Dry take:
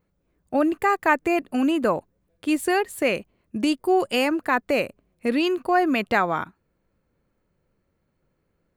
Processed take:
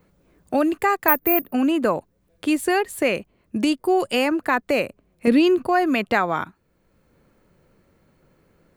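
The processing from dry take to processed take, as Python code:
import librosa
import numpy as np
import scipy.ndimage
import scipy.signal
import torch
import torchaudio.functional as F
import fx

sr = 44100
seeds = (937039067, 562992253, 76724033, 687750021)

y = fx.resample_bad(x, sr, factor=3, down='filtered', up='zero_stuff', at=(1.08, 1.53))
y = fx.low_shelf(y, sr, hz=390.0, db=11.5, at=(5.27, 5.67))
y = fx.band_squash(y, sr, depth_pct=40)
y = y * 10.0 ** (1.0 / 20.0)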